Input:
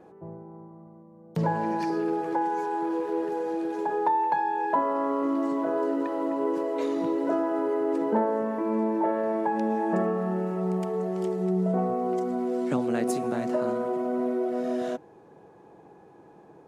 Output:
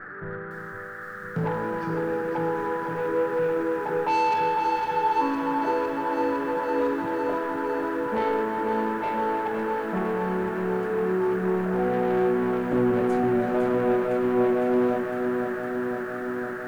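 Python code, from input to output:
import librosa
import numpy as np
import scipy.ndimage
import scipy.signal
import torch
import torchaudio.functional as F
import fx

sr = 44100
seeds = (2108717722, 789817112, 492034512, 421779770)

p1 = fx.riaa(x, sr, side='playback')
p2 = fx.hum_notches(p1, sr, base_hz=50, count=7)
p3 = fx.dynamic_eq(p2, sr, hz=140.0, q=4.9, threshold_db=-44.0, ratio=4.0, max_db=-7)
p4 = fx.rider(p3, sr, range_db=3, speed_s=0.5)
p5 = p3 + (p4 * librosa.db_to_amplitude(0.0))
p6 = fx.resonator_bank(p5, sr, root=43, chord='major', decay_s=0.29)
p7 = fx.dmg_noise_band(p6, sr, seeds[0], low_hz=1200.0, high_hz=1800.0, level_db=-46.0)
p8 = 10.0 ** (-26.5 / 20.0) * np.tanh(p7 / 10.0 ** (-26.5 / 20.0))
p9 = p8 + fx.echo_banded(p8, sr, ms=313, feedback_pct=64, hz=2500.0, wet_db=-9, dry=0)
p10 = fx.spec_freeze(p9, sr, seeds[1], at_s=4.57, hold_s=0.65)
p11 = fx.echo_crushed(p10, sr, ms=507, feedback_pct=80, bits=10, wet_db=-7.0)
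y = p11 * librosa.db_to_amplitude(5.5)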